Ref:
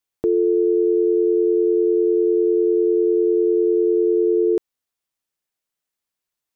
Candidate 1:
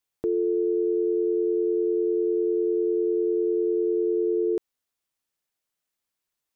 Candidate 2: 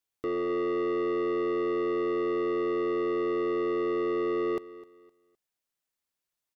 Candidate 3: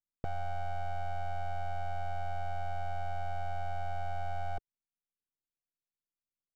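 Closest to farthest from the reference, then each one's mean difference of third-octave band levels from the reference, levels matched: 1, 2, 3; 1.0, 14.5, 23.5 decibels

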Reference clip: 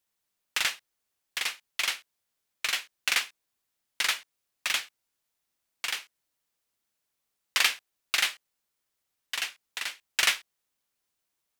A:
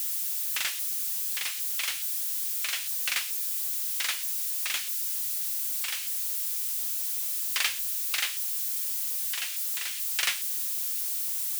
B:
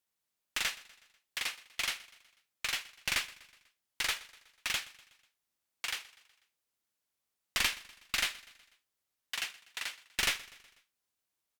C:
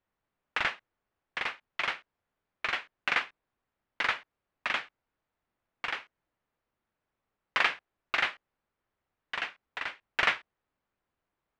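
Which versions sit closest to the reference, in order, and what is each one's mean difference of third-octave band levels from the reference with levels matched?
B, A, C; 3.5, 6.0, 10.0 decibels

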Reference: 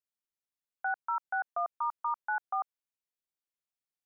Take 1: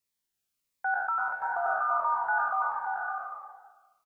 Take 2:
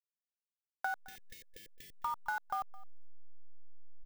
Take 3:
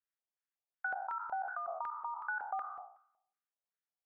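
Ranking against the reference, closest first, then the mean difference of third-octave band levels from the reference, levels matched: 3, 1, 2; 4.0, 5.5, 18.5 decibels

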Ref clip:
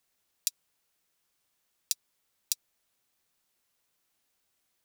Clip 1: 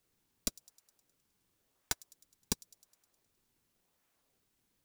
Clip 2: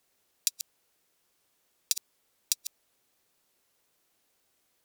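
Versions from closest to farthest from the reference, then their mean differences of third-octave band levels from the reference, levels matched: 2, 1; 5.0, 19.5 decibels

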